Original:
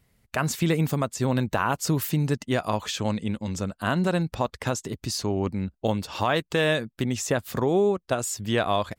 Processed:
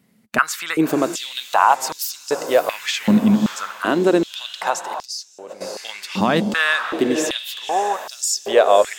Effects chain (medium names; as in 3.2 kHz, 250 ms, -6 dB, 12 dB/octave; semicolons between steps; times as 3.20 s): echo that smears into a reverb 583 ms, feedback 48%, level -8.5 dB; 5.03–5.61 s: level held to a coarse grid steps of 20 dB; step-sequenced high-pass 2.6 Hz 210–5200 Hz; trim +4 dB